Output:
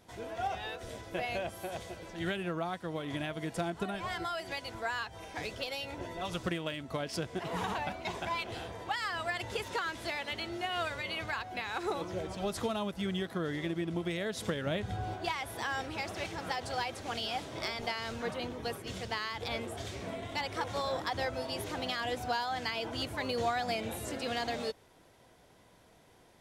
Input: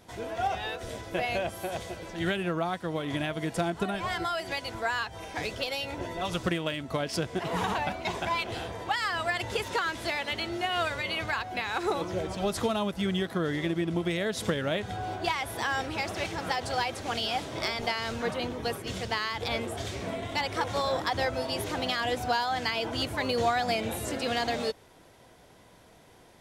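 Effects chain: 14.66–15.14 low shelf 170 Hz +10 dB; gain -5.5 dB

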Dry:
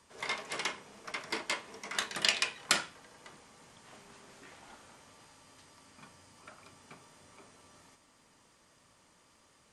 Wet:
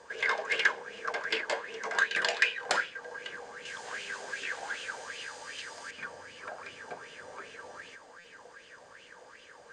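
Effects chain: 3.65–5.91 high shelf 2000 Hz +11 dB; LPF 7200 Hz 24 dB/oct; high shelf 4600 Hz +9 dB; notch 5600 Hz, Q 17; small resonant body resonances 480/1600 Hz, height 17 dB, ringing for 30 ms; compressor 1.5:1, threshold -46 dBFS, peak gain reduction 10.5 dB; stuck buffer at 8.19, samples 256, times 8; LFO bell 2.6 Hz 720–2900 Hz +18 dB

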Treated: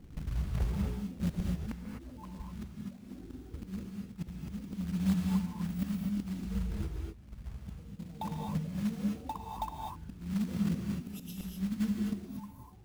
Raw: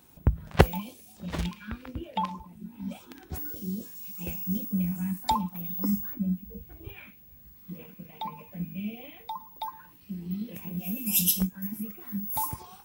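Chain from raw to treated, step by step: Wiener smoothing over 41 samples; RIAA curve playback; notches 60/120/180/240/300/360/420 Hz; auto swell 0.725 s; short-mantissa float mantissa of 2-bit; reverb, pre-delay 3 ms, DRR 0 dB; gain +2 dB

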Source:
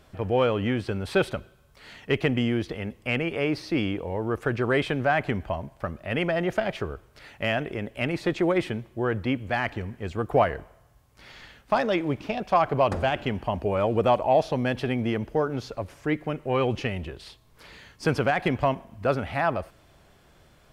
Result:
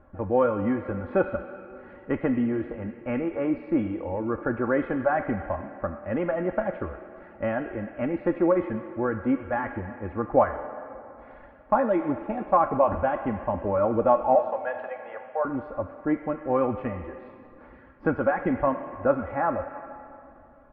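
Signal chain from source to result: 14.35–15.45 steep high-pass 510 Hz 48 dB/oct; reverb removal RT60 0.68 s; LPF 1500 Hz 24 dB/oct; comb 3.6 ms, depth 59%; on a send: tilt +4 dB/oct + reverb RT60 2.8 s, pre-delay 6 ms, DRR 5 dB

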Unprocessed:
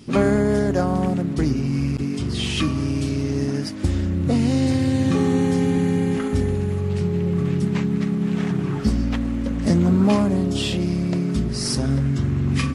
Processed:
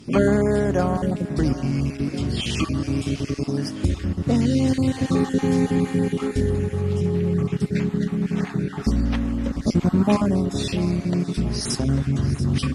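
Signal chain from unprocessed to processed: random spectral dropouts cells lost 25%; added harmonics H 4 -36 dB, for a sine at -7 dBFS; split-band echo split 330 Hz, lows 83 ms, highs 0.685 s, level -14.5 dB

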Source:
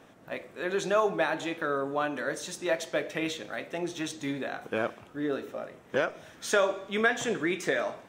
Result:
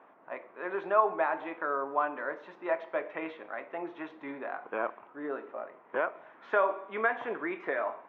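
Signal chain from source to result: speaker cabinet 440–2000 Hz, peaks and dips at 500 Hz -4 dB, 1000 Hz +7 dB, 1700 Hz -4 dB

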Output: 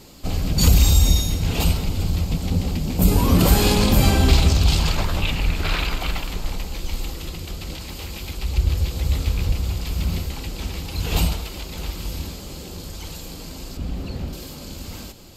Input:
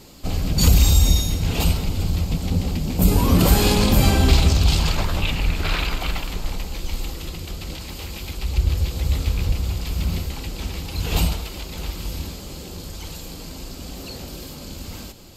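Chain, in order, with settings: 13.77–14.33 tone controls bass +9 dB, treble -11 dB

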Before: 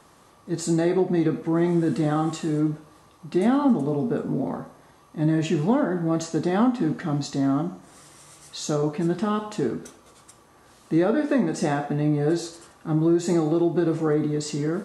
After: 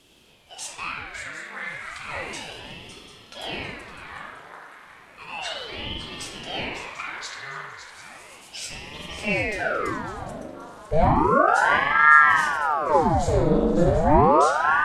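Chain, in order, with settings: 11.08–11.48 elliptic band-stop 600–5400 Hz; spring tank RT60 1.1 s, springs 40 ms, chirp 35 ms, DRR -1.5 dB; high-pass sweep 1800 Hz -> 94 Hz, 8.84–11; on a send: swung echo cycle 0.744 s, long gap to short 3:1, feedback 31%, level -10 dB; on the sum: ring modulator with a swept carrier 820 Hz, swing 85%, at 0.33 Hz; gain +1 dB

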